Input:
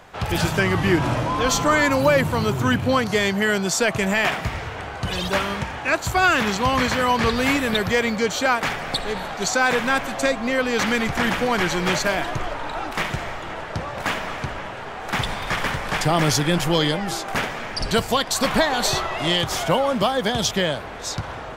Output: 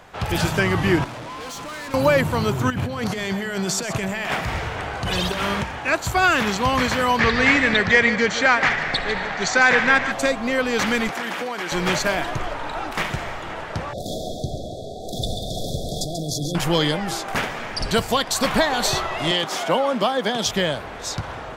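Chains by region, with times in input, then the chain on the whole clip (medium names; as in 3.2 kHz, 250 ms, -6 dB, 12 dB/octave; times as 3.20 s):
1.04–1.94 s: bass shelf 120 Hz -10 dB + valve stage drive 32 dB, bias 0.8 + loudspeaker Doppler distortion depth 0.16 ms
2.70–5.63 s: compressor with a negative ratio -25 dBFS + delay 130 ms -12 dB
7.19–10.12 s: low-pass 6.8 kHz 24 dB/octave + peaking EQ 1.9 kHz +10 dB 0.6 oct + delay 149 ms -11 dB
11.09–11.72 s: high-pass 280 Hz + compression 10:1, threshold -23 dBFS
13.93–16.55 s: compressor with a negative ratio -24 dBFS + brick-wall FIR band-stop 760–3300 Hz + two-band feedback delay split 390 Hz, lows 95 ms, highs 137 ms, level -7.5 dB
19.31–20.46 s: high-pass 190 Hz 24 dB/octave + treble shelf 8.8 kHz -8 dB
whole clip: none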